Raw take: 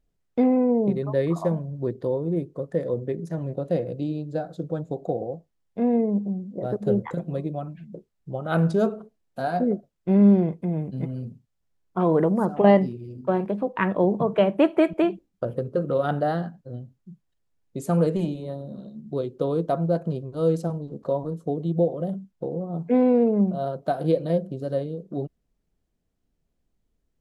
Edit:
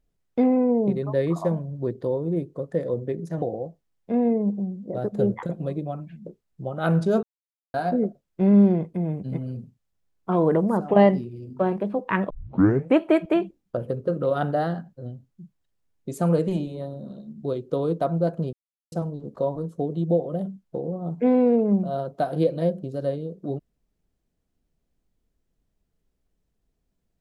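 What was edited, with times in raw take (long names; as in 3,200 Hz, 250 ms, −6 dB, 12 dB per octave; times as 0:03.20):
0:03.42–0:05.10: remove
0:08.91–0:09.42: silence
0:13.98: tape start 0.68 s
0:20.21–0:20.60: silence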